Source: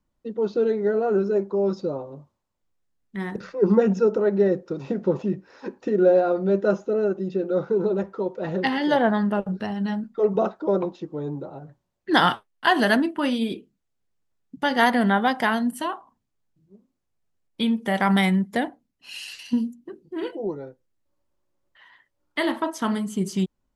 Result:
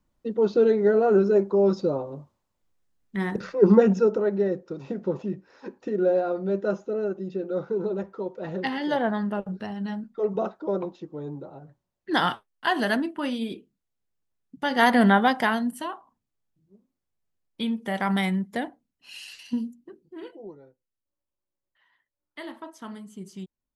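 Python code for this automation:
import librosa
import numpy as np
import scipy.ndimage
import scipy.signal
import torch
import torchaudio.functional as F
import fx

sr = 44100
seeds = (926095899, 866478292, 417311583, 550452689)

y = fx.gain(x, sr, db=fx.line((3.7, 2.5), (4.46, -5.0), (14.58, -5.0), (15.03, 3.0), (15.87, -5.0), (19.74, -5.0), (20.61, -14.5)))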